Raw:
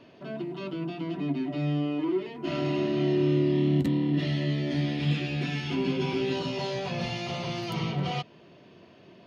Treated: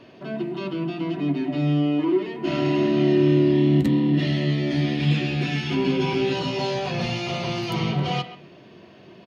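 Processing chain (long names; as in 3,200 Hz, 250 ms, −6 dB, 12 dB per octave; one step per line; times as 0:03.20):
far-end echo of a speakerphone 130 ms, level −13 dB
on a send at −9 dB: convolution reverb RT60 0.70 s, pre-delay 3 ms
on the sum: level +5 dB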